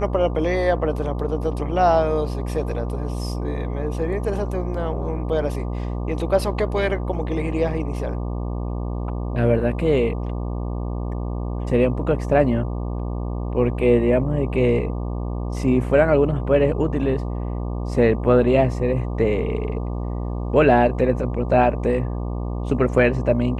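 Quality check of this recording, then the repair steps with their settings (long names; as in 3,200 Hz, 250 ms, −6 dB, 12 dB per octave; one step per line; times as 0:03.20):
mains buzz 60 Hz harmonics 20 −26 dBFS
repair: hum removal 60 Hz, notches 20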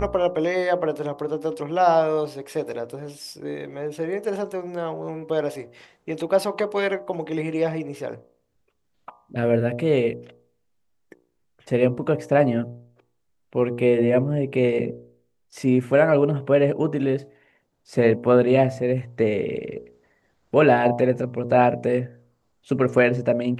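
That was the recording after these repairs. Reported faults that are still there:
none of them is left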